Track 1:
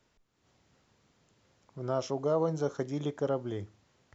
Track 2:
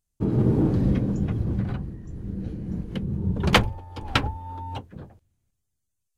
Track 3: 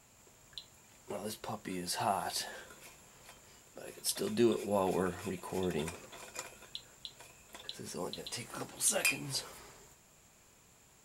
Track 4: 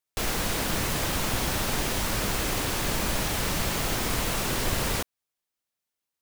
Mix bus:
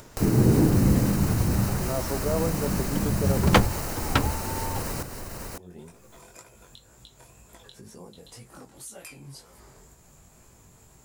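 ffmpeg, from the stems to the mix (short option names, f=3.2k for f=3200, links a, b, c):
-filter_complex "[0:a]volume=1dB[a];[1:a]volume=1.5dB[b];[2:a]lowshelf=f=160:g=9.5,flanger=delay=16.5:depth=5.9:speed=2,volume=-19dB[c];[3:a]bandreject=f=3.4k:w=5.4,alimiter=limit=-19dB:level=0:latency=1:release=50,volume=-2dB,asplit=2[d][e];[e]volume=-8.5dB,aecho=0:1:551:1[f];[a][b][c][d][f]amix=inputs=5:normalize=0,equalizer=f=2.9k:t=o:w=1.5:g=-7,acompressor=mode=upward:threshold=-30dB:ratio=2.5"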